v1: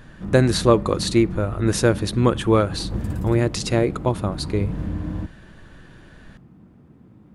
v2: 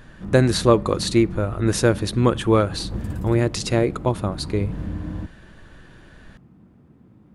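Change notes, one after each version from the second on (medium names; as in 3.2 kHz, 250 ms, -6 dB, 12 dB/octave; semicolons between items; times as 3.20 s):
background: send off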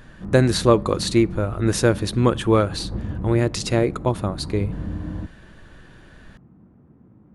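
background: add low-pass 1.6 kHz 12 dB/octave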